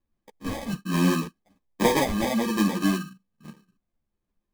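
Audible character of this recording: phasing stages 4, 1.2 Hz, lowest notch 420–1500 Hz; aliases and images of a low sample rate 1400 Hz, jitter 0%; a shimmering, thickened sound

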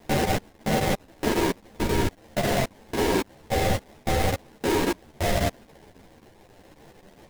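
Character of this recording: a quantiser's noise floor 8-bit, dither triangular; chopped level 3.7 Hz, depth 60%, duty 90%; aliases and images of a low sample rate 1300 Hz, jitter 20%; a shimmering, thickened sound

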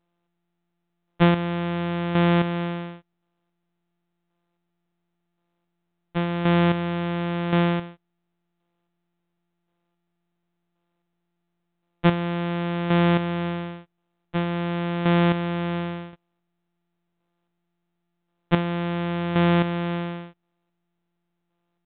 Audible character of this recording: a buzz of ramps at a fixed pitch in blocks of 256 samples; chopped level 0.93 Hz, depth 60%, duty 25%; µ-law

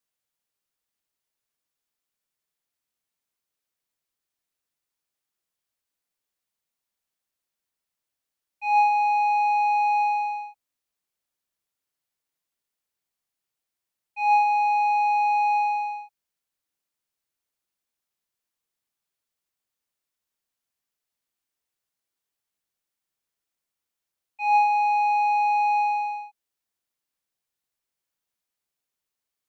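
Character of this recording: noise floor -86 dBFS; spectral tilt 0.0 dB/oct

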